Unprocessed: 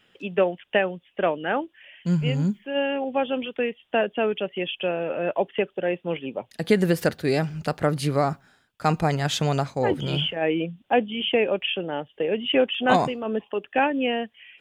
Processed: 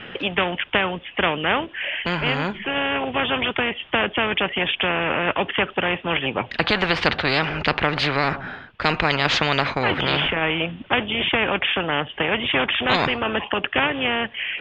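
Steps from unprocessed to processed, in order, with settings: LPF 2900 Hz 24 dB/oct; spectral compressor 4:1; gain +4 dB

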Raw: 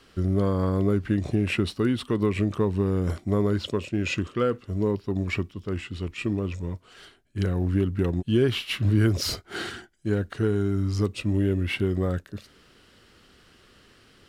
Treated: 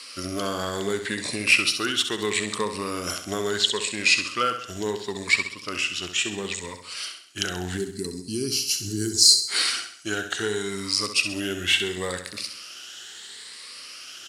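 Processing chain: moving spectral ripple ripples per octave 0.95, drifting +0.73 Hz, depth 9 dB; weighting filter ITU-R 468; spectral gain 7.77–9.48, 440–4000 Hz -20 dB; high shelf 6900 Hz +9.5 dB; in parallel at +1 dB: compressor, threshold -33 dBFS, peak gain reduction 20 dB; on the sum: short-mantissa float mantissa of 8-bit; on a send: feedback echo 66 ms, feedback 47%, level -9 dB; on the sum: gain -1 dB

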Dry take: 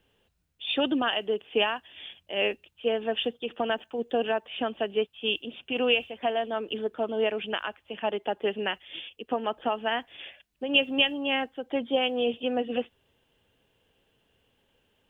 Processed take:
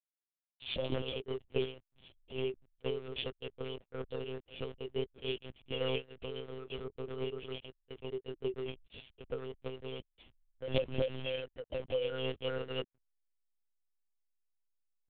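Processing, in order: elliptic band-stop 520–2800 Hz, stop band 80 dB; on a send: narrowing echo 0.175 s, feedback 79%, band-pass 980 Hz, level -19 dB; on the sum: backlash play -34 dBFS; formant-preserving pitch shift +11.5 st; monotone LPC vocoder at 8 kHz 130 Hz; gain -5.5 dB

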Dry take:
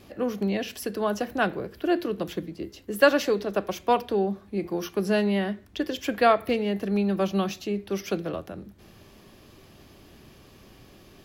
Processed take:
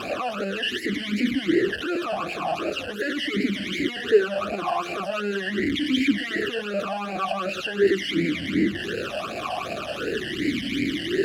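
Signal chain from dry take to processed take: infinite clipping; phaser stages 12, 2.7 Hz, lowest notch 380–1100 Hz; maximiser +27 dB; vowel sweep a-i 0.42 Hz; gain -4.5 dB

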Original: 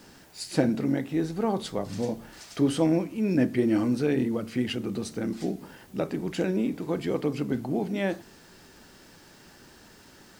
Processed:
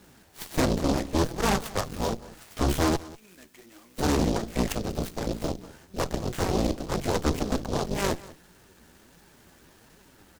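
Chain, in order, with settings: octaver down 2 oct, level -1 dB; 2.96–3.98 differentiator; flange 1.3 Hz, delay 4.6 ms, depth 9.1 ms, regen +25%; 1.19–1.84 dynamic EQ 1100 Hz, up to +7 dB, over -46 dBFS, Q 1.1; added harmonics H 8 -9 dB, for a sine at -13.5 dBFS; on a send: echo 0.192 s -19.5 dB; on the sum: noise-modulated delay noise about 4400 Hz, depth 0.061 ms

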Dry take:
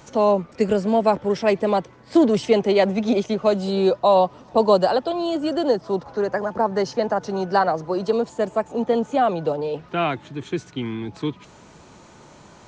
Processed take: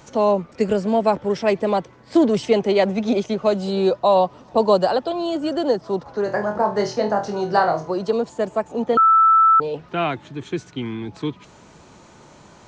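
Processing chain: 6.24–7.91 flutter echo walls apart 4.1 m, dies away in 0.28 s; 8.97–9.6 bleep 1320 Hz -10 dBFS

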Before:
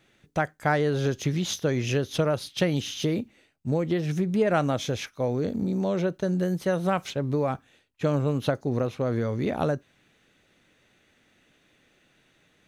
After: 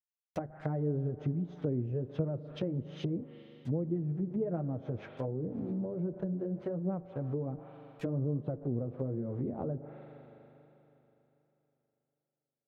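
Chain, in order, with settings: level-crossing sampler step -41.5 dBFS; HPF 49 Hz 6 dB/oct; spring tank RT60 3.4 s, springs 40 ms, chirp 70 ms, DRR 14 dB; flange 1.3 Hz, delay 5.2 ms, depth 4.3 ms, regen -18%; treble ducked by the level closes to 400 Hz, closed at -26.5 dBFS; gain -3.5 dB

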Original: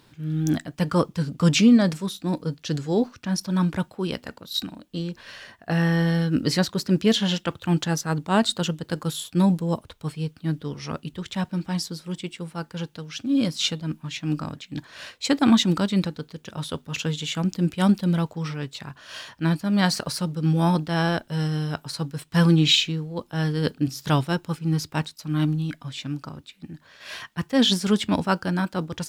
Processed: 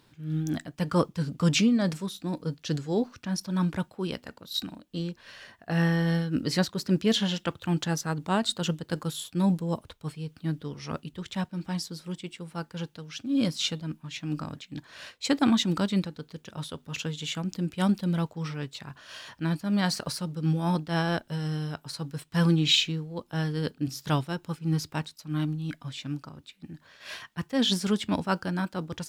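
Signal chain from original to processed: noise-modulated level, depth 65%; gain -1 dB

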